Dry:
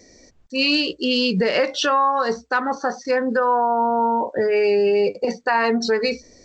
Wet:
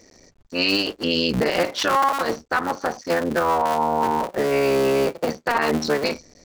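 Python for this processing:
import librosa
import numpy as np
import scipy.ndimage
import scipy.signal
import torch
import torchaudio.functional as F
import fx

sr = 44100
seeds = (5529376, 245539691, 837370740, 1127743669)

y = fx.cycle_switch(x, sr, every=3, mode='muted')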